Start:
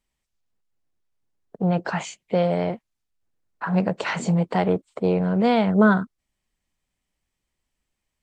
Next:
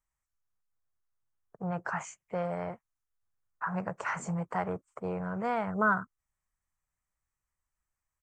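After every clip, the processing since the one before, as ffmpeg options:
ffmpeg -i in.wav -af "firequalizer=gain_entry='entry(120,0);entry(220,-11);entry(1200,6);entry(3800,-20);entry(6000,0)':delay=0.05:min_phase=1,volume=-7dB" out.wav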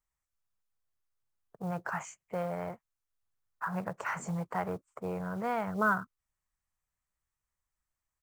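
ffmpeg -i in.wav -af "acrusher=bits=7:mode=log:mix=0:aa=0.000001,volume=-1.5dB" out.wav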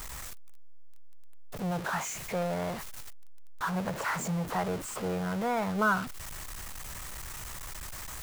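ffmpeg -i in.wav -af "aeval=exprs='val(0)+0.5*0.0224*sgn(val(0))':channel_layout=same" out.wav

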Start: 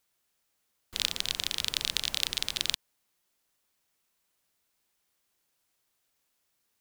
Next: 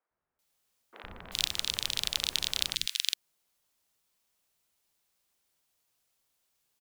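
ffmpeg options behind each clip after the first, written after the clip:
ffmpeg -i in.wav -filter_complex "[0:a]acrossover=split=300|1700[link_01][link_02][link_03];[link_01]adelay=110[link_04];[link_03]adelay=390[link_05];[link_04][link_02][link_05]amix=inputs=3:normalize=0" out.wav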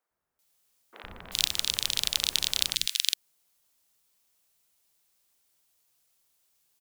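ffmpeg -i in.wav -af "highshelf=frequency=4800:gain=6,volume=1dB" out.wav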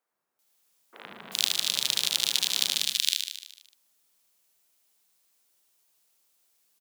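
ffmpeg -i in.wav -af "highpass=frequency=160:width=0.5412,highpass=frequency=160:width=1.3066,aecho=1:1:75|150|225|300|375|450|525|600:0.562|0.337|0.202|0.121|0.0729|0.0437|0.0262|0.0157" out.wav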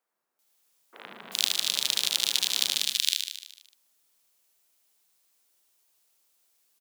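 ffmpeg -i in.wav -af "highpass=180" out.wav

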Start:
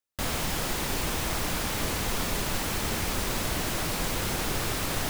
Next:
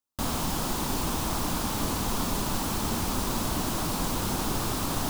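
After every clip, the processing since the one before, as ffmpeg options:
ffmpeg -i in.wav -af "equalizer=frequency=250:width_type=o:width=1:gain=6,equalizer=frequency=500:width_type=o:width=1:gain=-4,equalizer=frequency=1000:width_type=o:width=1:gain=6,equalizer=frequency=2000:width_type=o:width=1:gain=-9" out.wav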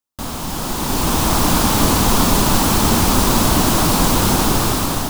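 ffmpeg -i in.wav -af "dynaudnorm=framelen=390:gausssize=5:maxgain=12.5dB,volume=2.5dB" out.wav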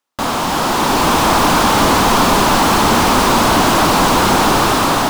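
ffmpeg -i in.wav -filter_complex "[0:a]asplit=2[link_01][link_02];[link_02]highpass=frequency=720:poles=1,volume=23dB,asoftclip=type=tanh:threshold=-1dB[link_03];[link_01][link_03]amix=inputs=2:normalize=0,lowpass=frequency=1800:poles=1,volume=-6dB" out.wav

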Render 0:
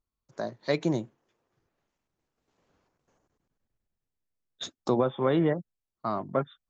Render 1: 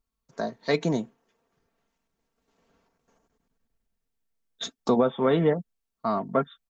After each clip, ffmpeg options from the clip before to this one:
ffmpeg -i in.wav -af "aecho=1:1:4.4:0.56,volume=2.5dB" out.wav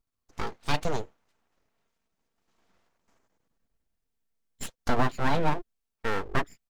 ffmpeg -i in.wav -af "aeval=exprs='abs(val(0))':channel_layout=same" out.wav

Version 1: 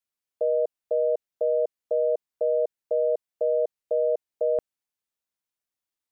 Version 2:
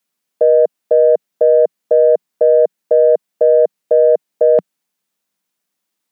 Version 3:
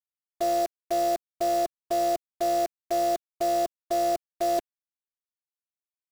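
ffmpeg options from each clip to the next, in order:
ffmpeg -i in.wav -af "lowshelf=frequency=130:width_type=q:width=3:gain=-11,acontrast=65,volume=6.5dB" out.wav
ffmpeg -i in.wav -af "afftfilt=real='hypot(re,im)*cos(PI*b)':imag='0':win_size=512:overlap=0.75,acrusher=bits=5:dc=4:mix=0:aa=0.000001,volume=-8.5dB" out.wav

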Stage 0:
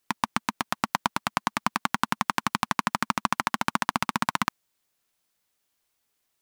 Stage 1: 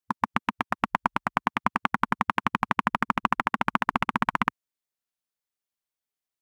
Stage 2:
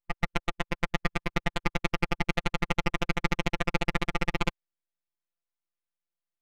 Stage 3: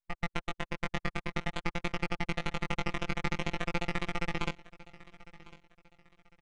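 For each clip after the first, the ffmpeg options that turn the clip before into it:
ffmpeg -i in.wav -af "afwtdn=0.02,volume=1.5dB" out.wav
ffmpeg -i in.wav -af "aeval=exprs='abs(val(0))':channel_layout=same,adynamicsmooth=sensitivity=2.5:basefreq=3700,afftfilt=real='hypot(re,im)*cos(PI*b)':imag='0':win_size=1024:overlap=0.75,volume=1.5dB" out.wav
ffmpeg -i in.wav -af "flanger=delay=17:depth=3.4:speed=0.5,aecho=1:1:1052|2104|3156:0.1|0.032|0.0102,aresample=22050,aresample=44100,volume=-2dB" out.wav

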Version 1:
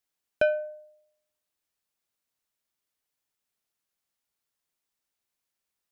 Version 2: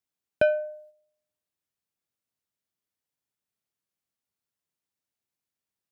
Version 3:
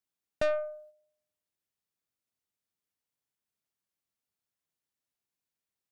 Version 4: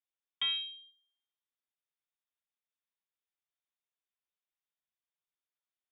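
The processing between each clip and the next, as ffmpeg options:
ffmpeg -i in.wav -af "highpass=85,agate=range=-6dB:threshold=-54dB:ratio=16:detection=peak,lowshelf=frequency=290:gain=10.5" out.wav
ffmpeg -i in.wav -af "aeval=exprs='(tanh(15.8*val(0)+0.5)-tanh(0.5))/15.8':channel_layout=same" out.wav
ffmpeg -i in.wav -af "lowpass=frequency=3200:width_type=q:width=0.5098,lowpass=frequency=3200:width_type=q:width=0.6013,lowpass=frequency=3200:width_type=q:width=0.9,lowpass=frequency=3200:width_type=q:width=2.563,afreqshift=-3800,volume=-5dB" out.wav

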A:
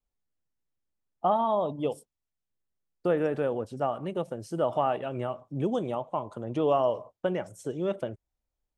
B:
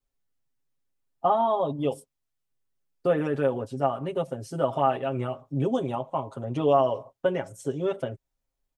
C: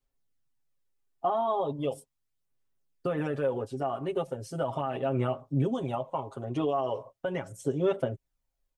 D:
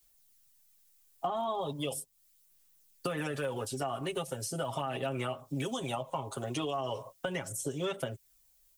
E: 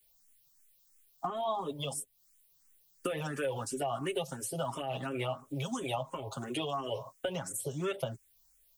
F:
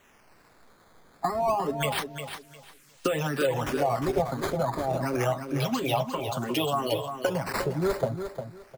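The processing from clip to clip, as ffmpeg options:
ffmpeg -i in.wav -af "aecho=1:1:7.4:0.96" out.wav
ffmpeg -i in.wav -af "alimiter=limit=-18dB:level=0:latency=1:release=78,aphaser=in_gain=1:out_gain=1:delay=2.8:decay=0.35:speed=0.38:type=sinusoidal,volume=-2dB" out.wav
ffmpeg -i in.wav -filter_complex "[0:a]crystalizer=i=7.5:c=0,acrossover=split=210|820[link_01][link_02][link_03];[link_01]acompressor=threshold=-45dB:ratio=4[link_04];[link_02]acompressor=threshold=-41dB:ratio=4[link_05];[link_03]acompressor=threshold=-42dB:ratio=4[link_06];[link_04][link_05][link_06]amix=inputs=3:normalize=0,volume=3dB" out.wav
ffmpeg -i in.wav -filter_complex "[0:a]asplit=2[link_01][link_02];[link_02]afreqshift=2.9[link_03];[link_01][link_03]amix=inputs=2:normalize=1,volume=2.5dB" out.wav
ffmpeg -i in.wav -filter_complex "[0:a]acrossover=split=830|1200[link_01][link_02][link_03];[link_03]acrusher=samples=9:mix=1:aa=0.000001:lfo=1:lforange=14.4:lforate=0.28[link_04];[link_01][link_02][link_04]amix=inputs=3:normalize=0,aecho=1:1:354|708|1062:0.376|0.0827|0.0182,volume=8dB" out.wav

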